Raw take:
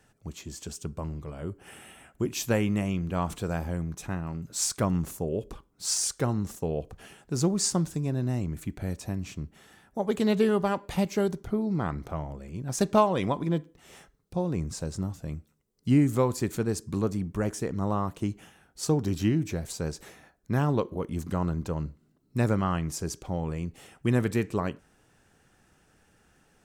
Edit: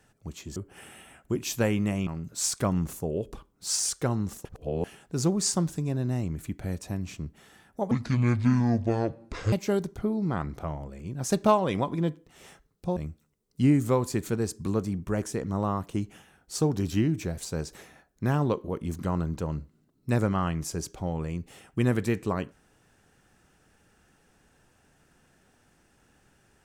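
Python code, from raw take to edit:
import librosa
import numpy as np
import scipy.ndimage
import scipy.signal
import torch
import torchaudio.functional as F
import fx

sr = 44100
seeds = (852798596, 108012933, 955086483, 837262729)

y = fx.edit(x, sr, fx.cut(start_s=0.56, length_s=0.9),
    fx.cut(start_s=2.97, length_s=1.28),
    fx.reverse_span(start_s=6.63, length_s=0.39),
    fx.speed_span(start_s=10.09, length_s=0.92, speed=0.57),
    fx.cut(start_s=14.45, length_s=0.79), tone=tone)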